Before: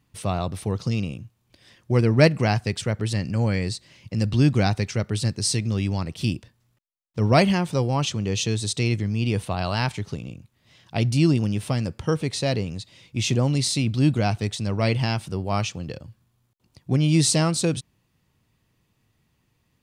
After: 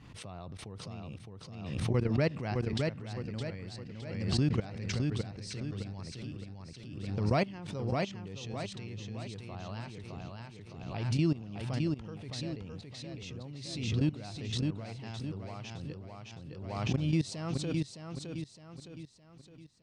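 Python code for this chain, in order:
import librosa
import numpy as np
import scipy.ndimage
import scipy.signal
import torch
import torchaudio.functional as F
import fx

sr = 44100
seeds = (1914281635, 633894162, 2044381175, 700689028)

y = fx.high_shelf(x, sr, hz=8600.0, db=-6.5)
y = fx.level_steps(y, sr, step_db=18)
y = fx.air_absorb(y, sr, metres=72.0)
y = fx.echo_feedback(y, sr, ms=613, feedback_pct=44, wet_db=-3.5)
y = fx.pre_swell(y, sr, db_per_s=44.0)
y = y * 10.0 ** (-8.0 / 20.0)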